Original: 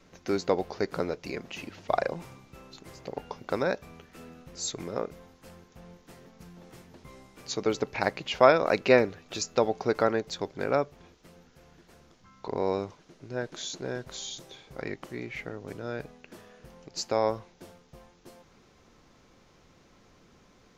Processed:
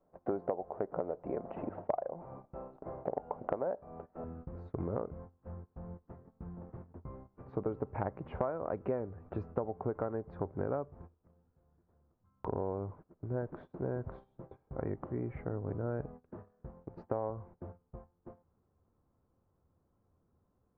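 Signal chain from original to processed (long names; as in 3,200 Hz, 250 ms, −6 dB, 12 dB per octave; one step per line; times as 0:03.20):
low-pass filter 1,200 Hz 24 dB per octave
noise gate −50 dBFS, range −19 dB
parametric band 660 Hz +12 dB 1 octave, from 0:04.24 84 Hz
downward compressor 12 to 1, threshold −32 dBFS, peak gain reduction 22 dB
level +1 dB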